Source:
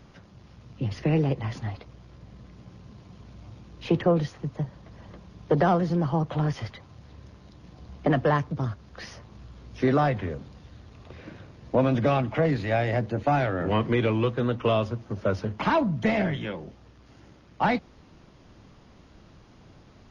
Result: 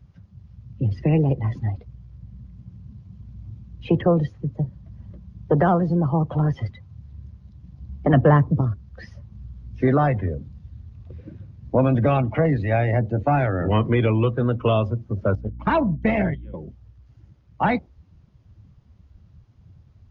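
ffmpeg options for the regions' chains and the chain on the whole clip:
ffmpeg -i in.wav -filter_complex "[0:a]asettb=1/sr,asplit=3[link_01][link_02][link_03];[link_01]atrim=end=8.134[link_04];[link_02]atrim=start=8.13:end=8.61,asetpts=PTS-STARTPTS,afade=type=in:duration=0.004:curve=qsin,afade=type=out:start_time=0.476:duration=0.004:curve=qsin,highpass=57,equalizer=frequency=170:width=0.32:gain=6[link_05];[link_03]atrim=start=8.606[link_06];[link_04][link_05]acrossfade=duration=0.004:curve1=hsin:curve2=qsin[link_07];[link_07][link_06]acrossfade=duration=0.004:curve1=qsin:curve2=hsin,asettb=1/sr,asplit=3[link_08][link_09][link_10];[link_08]atrim=end=15.354[link_11];[link_09]atrim=start=15.35:end=16.54,asetpts=PTS-STARTPTS,afade=type=in:duration=0.004:curve=qsin,afade=type=out:start_time=1.186:duration=0.004:curve=qsin,agate=range=-14dB:threshold=-28dB:ratio=16:release=100:detection=peak,aeval=exprs='val(0)+0.00794*(sin(2*PI*60*n/s)+sin(2*PI*2*60*n/s)/2+sin(2*PI*3*60*n/s)/3+sin(2*PI*4*60*n/s)/4+sin(2*PI*5*60*n/s)/5)':channel_layout=same[link_12];[link_10]atrim=start=16.536[link_13];[link_11][link_12]acrossfade=duration=0.004:curve1=hsin:curve2=qsin[link_14];[link_14][link_13]acrossfade=duration=0.004:curve1=qsin:curve2=hsin,equalizer=frequency=80:width=0.91:gain=7,afftdn=noise_reduction=17:noise_floor=-36,volume=2.5dB" out.wav

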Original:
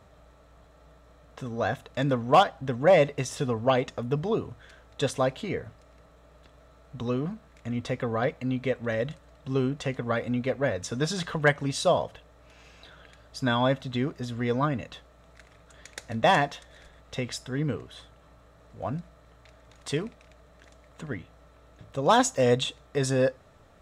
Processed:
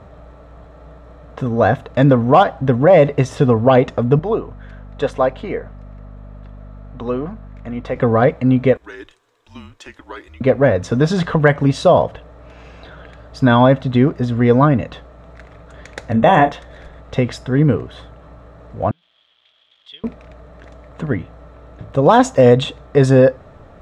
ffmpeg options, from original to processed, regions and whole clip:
ffmpeg -i in.wav -filter_complex "[0:a]asettb=1/sr,asplit=3[link_01][link_02][link_03];[link_01]atrim=end=4.194[link_04];[link_02]atrim=start=4.19:end=7.96,asetpts=PTS-STARTPTS,afade=type=in:duration=0.004:curve=qsin,afade=type=out:start_time=3.766:duration=0.004:curve=qsin,highpass=frequency=720:poles=1,highshelf=frequency=2500:gain=-8.5,aeval=exprs='val(0)+0.00316*(sin(2*PI*50*n/s)+sin(2*PI*2*50*n/s)/2+sin(2*PI*3*50*n/s)/3+sin(2*PI*4*50*n/s)/4+sin(2*PI*5*50*n/s)/5)':channel_layout=same[link_05];[link_03]atrim=start=7.956[link_06];[link_04][link_05]acrossfade=duration=0.004:curve1=hsin:curve2=qsin[link_07];[link_07][link_06]acrossfade=duration=0.004:curve1=qsin:curve2=hsin,asettb=1/sr,asplit=3[link_08][link_09][link_10];[link_08]atrim=end=8.774[link_11];[link_09]atrim=start=8.77:end=10.41,asetpts=PTS-STARTPTS,afade=type=in:duration=0.004:curve=qsin,afade=type=out:start_time=1.636:duration=0.004:curve=qsin,aderivative,afreqshift=-170[link_12];[link_10]atrim=start=10.406[link_13];[link_11][link_12]acrossfade=duration=0.004:curve1=hsin:curve2=qsin[link_14];[link_14][link_13]acrossfade=duration=0.004:curve1=qsin:curve2=hsin,asettb=1/sr,asplit=3[link_15][link_16][link_17];[link_15]atrim=end=16.124[link_18];[link_16]atrim=start=16.12:end=16.52,asetpts=PTS-STARTPTS,afade=type=in:duration=0.004:curve=qsin,afade=type=out:start_time=0.396:duration=0.004:curve=qsin,asuperstop=centerf=4700:order=12:qfactor=2.4,asplit=2[link_19][link_20];[link_20]adelay=31,volume=-8dB[link_21];[link_19][link_21]amix=inputs=2:normalize=0,atrim=end_sample=17640[link_22];[link_17]atrim=start=16.516[link_23];[link_18][link_22]acrossfade=duration=0.004:curve1=hsin:curve2=qsin[link_24];[link_24][link_23]acrossfade=duration=0.004:curve1=qsin:curve2=hsin,asettb=1/sr,asplit=3[link_25][link_26][link_27];[link_25]atrim=end=18.914[link_28];[link_26]atrim=start=18.91:end=20.04,asetpts=PTS-STARTPTS,afade=type=in:duration=0.004:curve=qsin,afade=type=out:start_time=1.126:duration=0.004:curve=qsin,aeval=exprs='val(0)+0.5*0.00944*sgn(val(0))':channel_layout=same,bandpass=frequency=3300:width_type=q:width=14[link_29];[link_27]atrim=start=20.036[link_30];[link_28][link_29]acrossfade=duration=0.004:curve1=hsin:curve2=qsin[link_31];[link_31][link_30]acrossfade=duration=0.004:curve1=qsin:curve2=hsin,lowpass=frequency=1100:poles=1,alimiter=level_in=16.5dB:limit=-1dB:release=50:level=0:latency=1,volume=-1dB" out.wav

